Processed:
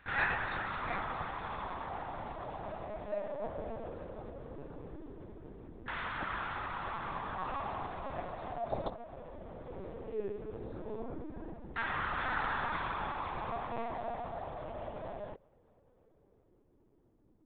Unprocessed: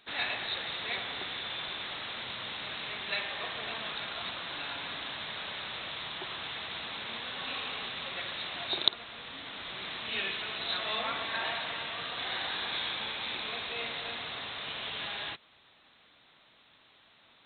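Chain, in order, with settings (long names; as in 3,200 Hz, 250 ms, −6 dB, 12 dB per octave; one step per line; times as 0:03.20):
auto-filter low-pass saw down 0.17 Hz 280–1,600 Hz
0:09.61–0:11.66: double-tracking delay 47 ms −6 dB
linear-prediction vocoder at 8 kHz pitch kept
level +1 dB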